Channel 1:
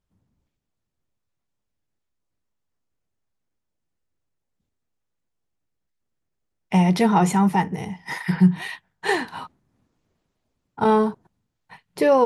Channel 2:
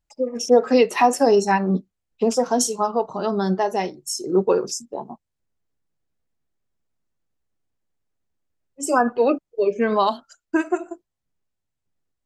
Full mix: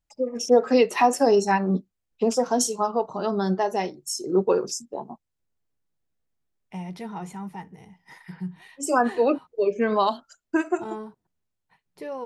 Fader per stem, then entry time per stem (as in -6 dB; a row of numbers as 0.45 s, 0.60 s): -17.5 dB, -2.5 dB; 0.00 s, 0.00 s